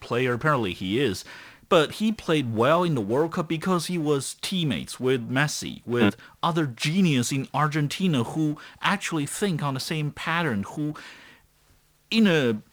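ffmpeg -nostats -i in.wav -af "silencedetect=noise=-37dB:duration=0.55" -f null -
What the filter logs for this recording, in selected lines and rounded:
silence_start: 11.12
silence_end: 12.12 | silence_duration: 0.99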